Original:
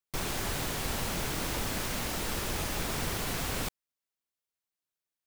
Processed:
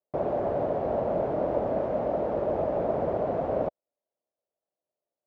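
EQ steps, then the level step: high-pass 54 Hz; resonant low-pass 610 Hz, resonance Q 4.9; bass shelf 140 Hz -12 dB; +6.0 dB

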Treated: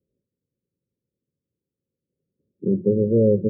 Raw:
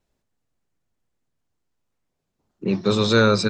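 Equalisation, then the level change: high-pass 99 Hz 12 dB/octave; rippled Chebyshev low-pass 560 Hz, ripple 3 dB; +2.5 dB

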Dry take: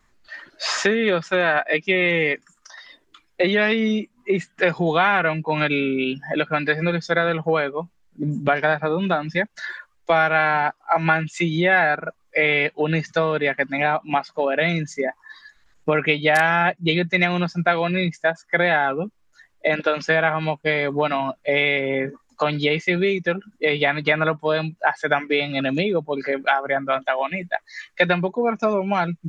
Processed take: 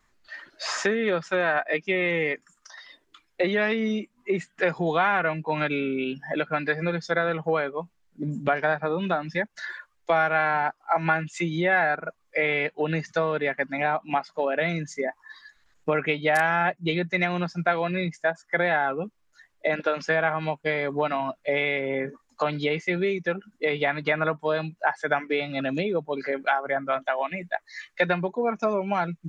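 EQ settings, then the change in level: dynamic bell 3.4 kHz, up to -6 dB, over -35 dBFS, Q 1; bass shelf 340 Hz -3.5 dB; -3.0 dB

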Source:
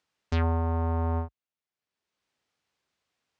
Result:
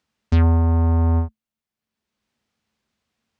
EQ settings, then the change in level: bass shelf 150 Hz +11 dB; peaking EQ 220 Hz +13 dB 0.23 oct; +2.5 dB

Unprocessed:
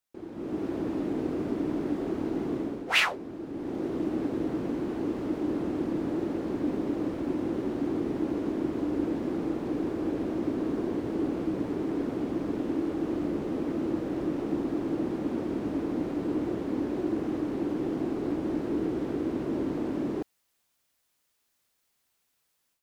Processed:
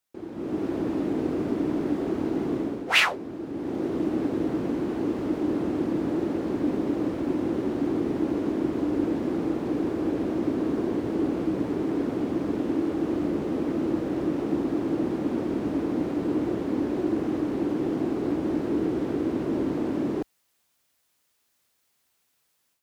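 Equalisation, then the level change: high-pass 46 Hz; +3.5 dB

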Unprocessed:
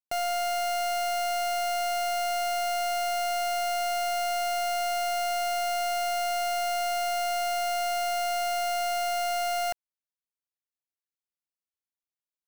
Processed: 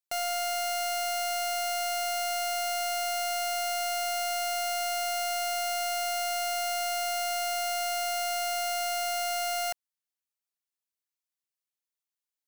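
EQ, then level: tone controls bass +2 dB, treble +3 dB; bass shelf 500 Hz -11 dB; 0.0 dB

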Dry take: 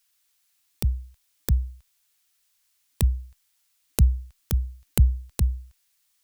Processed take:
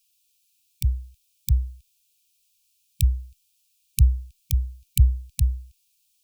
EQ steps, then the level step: brick-wall FIR band-stop 160–2300 Hz; +1.5 dB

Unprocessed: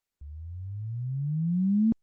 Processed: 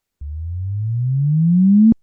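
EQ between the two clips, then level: bass shelf 450 Hz +6 dB; +8.0 dB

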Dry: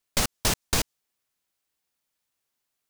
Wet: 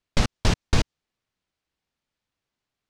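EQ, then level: low-pass 4.7 kHz 12 dB/octave; bass shelf 270 Hz +10 dB; 0.0 dB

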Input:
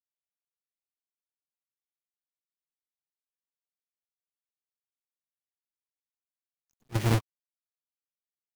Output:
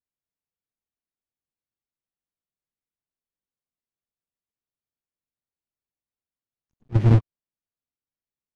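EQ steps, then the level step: tape spacing loss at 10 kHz 20 dB; bass shelf 410 Hz +11 dB; 0.0 dB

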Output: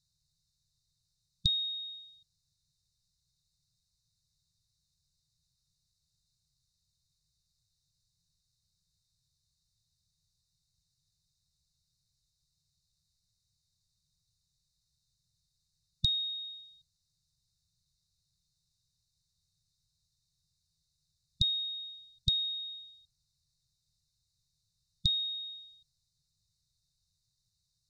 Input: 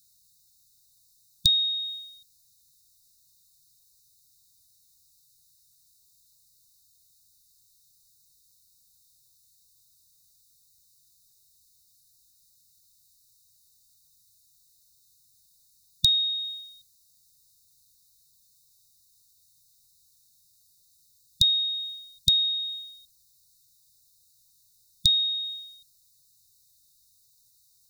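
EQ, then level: tape spacing loss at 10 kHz 24 dB; 0.0 dB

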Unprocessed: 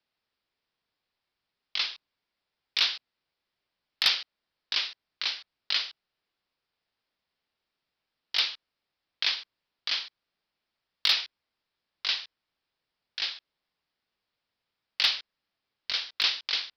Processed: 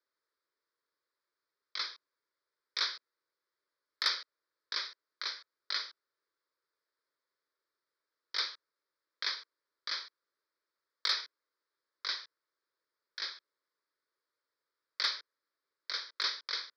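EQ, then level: band-pass 270–6400 Hz; static phaser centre 760 Hz, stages 6; 0.0 dB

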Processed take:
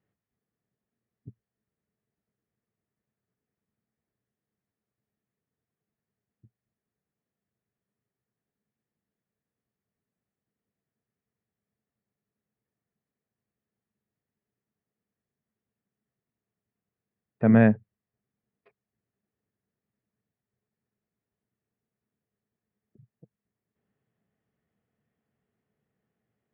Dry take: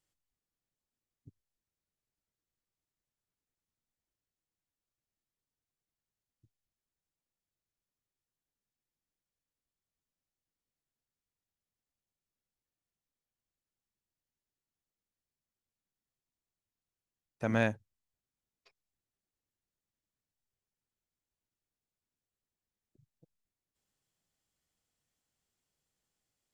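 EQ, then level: cabinet simulation 110–2600 Hz, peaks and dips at 120 Hz +5 dB, 210 Hz +10 dB, 430 Hz +10 dB, 680 Hz +6 dB, 1.2 kHz +3 dB, 1.8 kHz +6 dB; bass shelf 180 Hz +6 dB; bass shelf 370 Hz +6.5 dB; 0.0 dB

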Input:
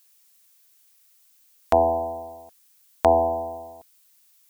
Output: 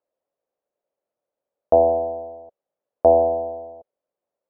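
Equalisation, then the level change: resonant low-pass 560 Hz, resonance Q 4.9; -2.5 dB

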